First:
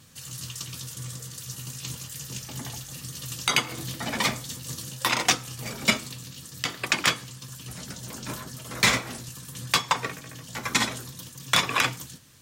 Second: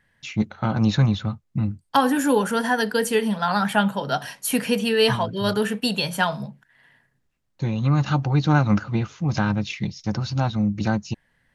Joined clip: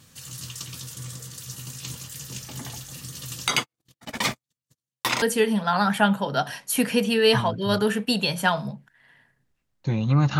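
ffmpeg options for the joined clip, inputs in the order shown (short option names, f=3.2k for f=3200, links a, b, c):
-filter_complex "[0:a]asettb=1/sr,asplit=3[a][b][c];[a]atrim=end=3.564[d];[b]atrim=start=3.56:end=5.22,asetpts=PTS-STARTPTS,afade=t=in:d=0.004:c=qsin,afade=t=out:st=1.656:d=0.004:c=qsin,agate=range=-56dB:threshold=-30dB:ratio=16:release=100:detection=peak[e];[c]atrim=start=5.216[f];[d][e]acrossfade=d=0.004:c1=hsin:c2=qsin[g];[g][f]acrossfade=d=0.004:c1=qsin:c2=hsin,apad=whole_dur=10.39,atrim=end=10.39,atrim=end=5.222[h];[1:a]atrim=start=2.968:end=8.14[i];[h][i]acrossfade=d=0.004:c1=hsin:c2=hsin"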